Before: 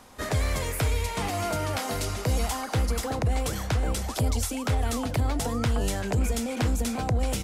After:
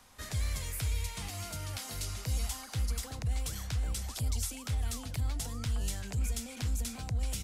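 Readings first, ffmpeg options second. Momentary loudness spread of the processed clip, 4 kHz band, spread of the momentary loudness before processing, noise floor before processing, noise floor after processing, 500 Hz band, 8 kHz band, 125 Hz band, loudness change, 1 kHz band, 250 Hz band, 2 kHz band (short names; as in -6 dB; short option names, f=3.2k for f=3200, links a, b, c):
4 LU, -6.5 dB, 2 LU, -35 dBFS, -46 dBFS, -18.5 dB, -4.5 dB, -7.5 dB, -8.0 dB, -16.0 dB, -14.5 dB, -11.0 dB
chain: -filter_complex "[0:a]equalizer=f=380:w=0.41:g=-9.5,acrossover=split=250|3000[a][b][c];[b]acompressor=threshold=-47dB:ratio=2[d];[a][d][c]amix=inputs=3:normalize=0,volume=-4.5dB"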